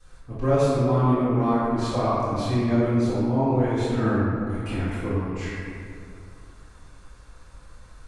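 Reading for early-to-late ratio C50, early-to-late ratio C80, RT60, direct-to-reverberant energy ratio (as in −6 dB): −4.0 dB, −1.0 dB, 2.4 s, −14.5 dB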